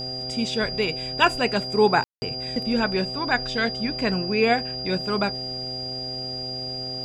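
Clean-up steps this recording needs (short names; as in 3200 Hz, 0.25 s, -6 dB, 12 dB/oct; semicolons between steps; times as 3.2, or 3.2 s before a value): de-hum 128.4 Hz, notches 6; notch 4800 Hz, Q 30; room tone fill 2.04–2.22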